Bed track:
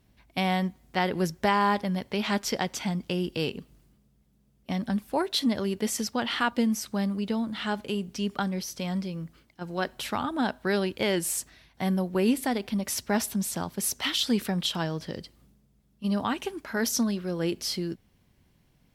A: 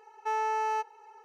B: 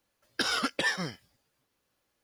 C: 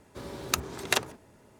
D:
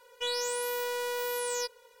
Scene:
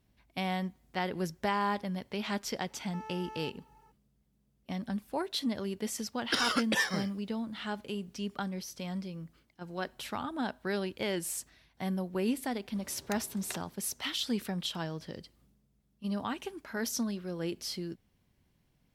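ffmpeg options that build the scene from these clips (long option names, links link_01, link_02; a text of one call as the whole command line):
ffmpeg -i bed.wav -i cue0.wav -i cue1.wav -i cue2.wav -filter_complex "[0:a]volume=-7dB[link_01];[1:a]acompressor=threshold=-34dB:ratio=6:attack=3.2:release=140:knee=1:detection=peak,atrim=end=1.24,asetpts=PTS-STARTPTS,volume=-10dB,afade=type=in:duration=0.004:curve=hsin,afade=type=out:start_time=1.236:duration=0.004:curve=hsin,adelay=2680[link_02];[2:a]atrim=end=2.23,asetpts=PTS-STARTPTS,volume=-1dB,afade=type=in:duration=0.004:curve=hsin,afade=type=out:start_time=2.226:duration=0.004:curve=hsin,adelay=261513S[link_03];[3:a]atrim=end=1.59,asetpts=PTS-STARTPTS,volume=-16.5dB,afade=type=in:duration=0.004:curve=hsin,afade=type=out:start_time=1.586:duration=0.004:curve=hsin,adelay=12580[link_04];[link_01][link_02][link_03][link_04]amix=inputs=4:normalize=0" out.wav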